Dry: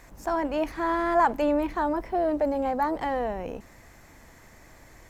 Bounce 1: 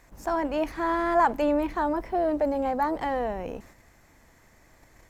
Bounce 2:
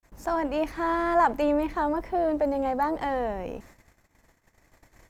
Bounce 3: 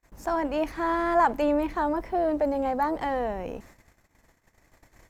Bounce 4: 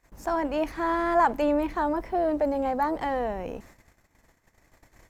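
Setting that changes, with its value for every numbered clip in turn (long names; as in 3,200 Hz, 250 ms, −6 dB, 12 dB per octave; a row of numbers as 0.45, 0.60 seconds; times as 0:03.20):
noise gate, range: −6, −53, −32, −20 decibels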